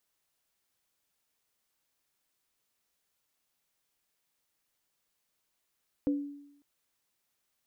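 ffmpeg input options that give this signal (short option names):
-f lavfi -i "aevalsrc='0.0668*pow(10,-3*t/0.81)*sin(2*PI*286*t)+0.0251*pow(10,-3*t/0.27)*sin(2*PI*501*t)':d=0.55:s=44100"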